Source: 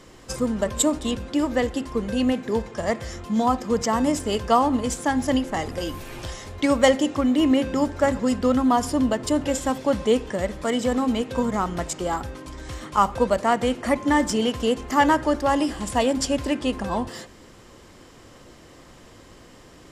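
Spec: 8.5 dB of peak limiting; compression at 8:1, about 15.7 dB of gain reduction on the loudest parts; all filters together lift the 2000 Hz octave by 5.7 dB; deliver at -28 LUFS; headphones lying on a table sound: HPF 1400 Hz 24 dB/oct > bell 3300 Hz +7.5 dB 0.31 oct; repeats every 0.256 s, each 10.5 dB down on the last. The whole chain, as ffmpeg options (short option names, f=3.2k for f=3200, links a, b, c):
-af "equalizer=f=2k:t=o:g=7,acompressor=threshold=-27dB:ratio=8,alimiter=limit=-22.5dB:level=0:latency=1,highpass=f=1.4k:w=0.5412,highpass=f=1.4k:w=1.3066,equalizer=f=3.3k:t=o:w=0.31:g=7.5,aecho=1:1:256|512|768:0.299|0.0896|0.0269,volume=10dB"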